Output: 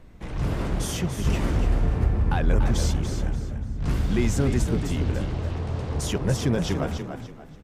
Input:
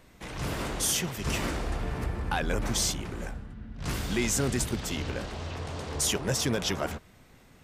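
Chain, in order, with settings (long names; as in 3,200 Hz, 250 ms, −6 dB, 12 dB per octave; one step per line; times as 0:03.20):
spectral tilt −2.5 dB per octave
echo with shifted repeats 289 ms, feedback 30%, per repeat +37 Hz, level −8 dB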